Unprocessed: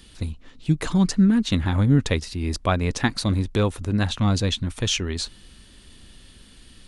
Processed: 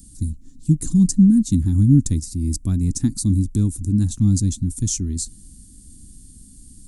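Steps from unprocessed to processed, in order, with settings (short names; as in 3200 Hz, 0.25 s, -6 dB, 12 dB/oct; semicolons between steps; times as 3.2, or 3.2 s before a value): EQ curve 290 Hz 0 dB, 510 Hz -30 dB, 3000 Hz -27 dB, 7500 Hz +6 dB; gain +4.5 dB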